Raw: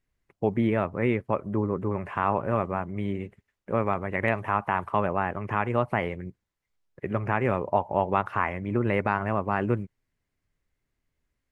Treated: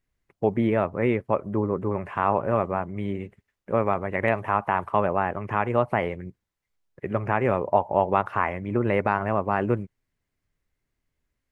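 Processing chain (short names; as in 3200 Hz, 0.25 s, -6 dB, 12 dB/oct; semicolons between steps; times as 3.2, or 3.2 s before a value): dynamic EQ 600 Hz, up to +4 dB, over -33 dBFS, Q 0.83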